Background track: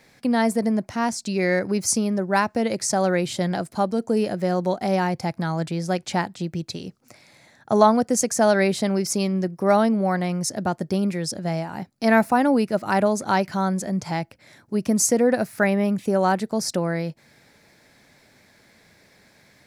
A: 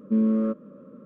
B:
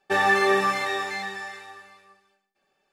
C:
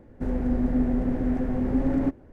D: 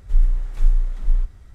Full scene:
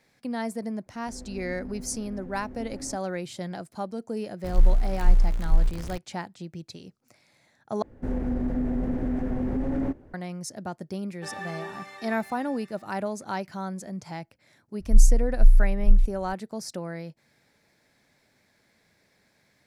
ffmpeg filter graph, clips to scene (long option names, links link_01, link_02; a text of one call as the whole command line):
ffmpeg -i bed.wav -i cue0.wav -i cue1.wav -i cue2.wav -i cue3.wav -filter_complex "[3:a]asplit=2[link_01][link_02];[4:a]asplit=2[link_03][link_04];[0:a]volume=-10.5dB[link_05];[link_03]aeval=exprs='val(0)+0.5*0.0335*sgn(val(0))':channel_layout=same[link_06];[link_02]alimiter=limit=-19dB:level=0:latency=1:release=25[link_07];[link_04]aemphasis=mode=reproduction:type=riaa[link_08];[link_05]asplit=2[link_09][link_10];[link_09]atrim=end=7.824[link_11];[link_07]atrim=end=2.32,asetpts=PTS-STARTPTS,volume=-1dB[link_12];[link_10]atrim=start=10.136[link_13];[link_01]atrim=end=2.32,asetpts=PTS-STARTPTS,volume=-16.5dB,afade=type=in:duration=0.004:curve=hsin,afade=type=out:start_time=2.316:duration=0.004:curve=hsin,adelay=860[link_14];[link_06]atrim=end=1.54,asetpts=PTS-STARTPTS,volume=-2dB,afade=type=in:duration=0.004:curve=hsin,afade=type=out:start_time=1.536:duration=0.004:curve=hsin,adelay=4440[link_15];[2:a]atrim=end=2.92,asetpts=PTS-STARTPTS,volume=-17.5dB,afade=type=in:duration=0.004:curve=hsin,afade=type=out:start_time=2.916:duration=0.004:curve=hsin,adelay=11120[link_16];[link_08]atrim=end=1.54,asetpts=PTS-STARTPTS,volume=-17.5dB,afade=type=in:duration=0.004:curve=hsin,afade=type=out:start_time=1.536:duration=0.004:curve=hsin,adelay=14800[link_17];[link_11][link_12]acrossfade=duration=0.004:curve1=hsin:curve2=hsin[link_18];[link_18][link_13]acrossfade=duration=0.004:curve1=hsin:curve2=hsin[link_19];[link_19][link_14][link_15][link_16][link_17]amix=inputs=5:normalize=0" out.wav